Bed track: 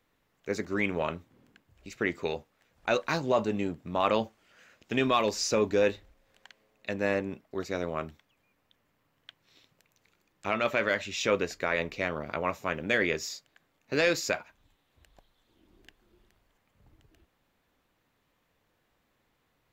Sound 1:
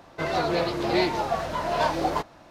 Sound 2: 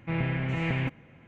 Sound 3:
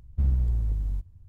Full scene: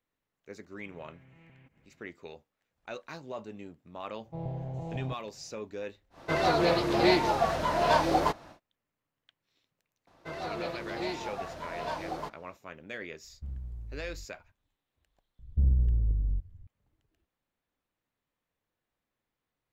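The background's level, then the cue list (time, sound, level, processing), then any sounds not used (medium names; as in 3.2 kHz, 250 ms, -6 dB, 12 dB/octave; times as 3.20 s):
bed track -14 dB
0.79 s: add 2 -14 dB + compression 4:1, threshold -44 dBFS
4.25 s: add 2 -6.5 dB + FFT filter 150 Hz 0 dB, 220 Hz -11 dB, 450 Hz +1 dB, 760 Hz +6 dB, 1.4 kHz -22 dB, 2.4 kHz -28 dB, 3.9 kHz -6 dB, 6.6 kHz -1 dB
6.10 s: add 1, fades 0.10 s
10.07 s: add 1 -11.5 dB
13.24 s: add 3 -16 dB
15.39 s: add 3 -0.5 dB + Chebyshev low-pass 540 Hz, order 3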